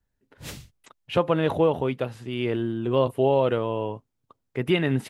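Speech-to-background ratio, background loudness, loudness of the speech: 16.5 dB, -41.5 LUFS, -25.0 LUFS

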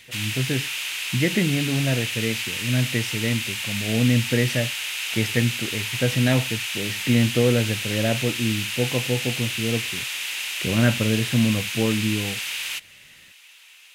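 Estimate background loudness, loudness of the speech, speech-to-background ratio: -26.5 LUFS, -24.5 LUFS, 2.0 dB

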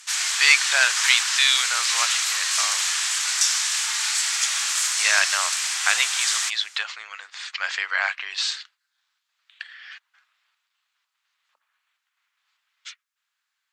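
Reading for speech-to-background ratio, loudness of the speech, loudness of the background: -1.5 dB, -22.5 LUFS, -21.0 LUFS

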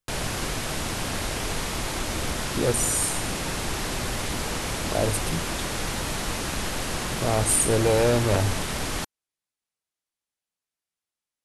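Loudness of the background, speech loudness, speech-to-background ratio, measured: -28.5 LUFS, -24.5 LUFS, 4.0 dB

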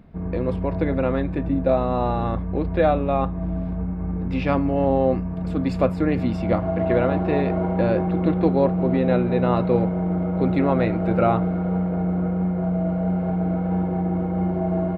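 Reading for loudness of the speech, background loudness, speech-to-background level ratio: -24.0 LUFS, -25.0 LUFS, 1.0 dB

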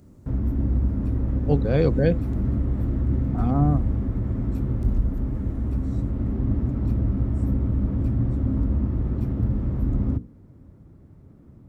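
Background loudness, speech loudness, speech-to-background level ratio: -25.5 LUFS, -24.0 LUFS, 1.5 dB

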